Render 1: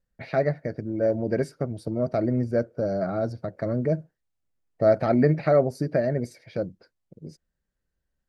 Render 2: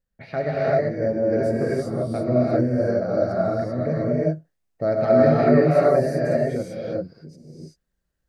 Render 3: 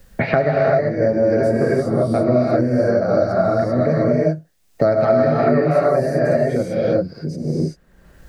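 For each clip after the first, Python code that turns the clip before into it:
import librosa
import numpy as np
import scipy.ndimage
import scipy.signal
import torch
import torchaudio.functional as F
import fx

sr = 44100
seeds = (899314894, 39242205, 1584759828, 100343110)

y1 = fx.rev_gated(x, sr, seeds[0], gate_ms=410, shape='rising', drr_db=-6.5)
y1 = fx.end_taper(y1, sr, db_per_s=350.0)
y1 = y1 * 10.0 ** (-3.0 / 20.0)
y2 = fx.dynamic_eq(y1, sr, hz=1100.0, q=1.3, threshold_db=-33.0, ratio=4.0, max_db=5)
y2 = fx.band_squash(y2, sr, depth_pct=100)
y2 = y2 * 10.0 ** (3.0 / 20.0)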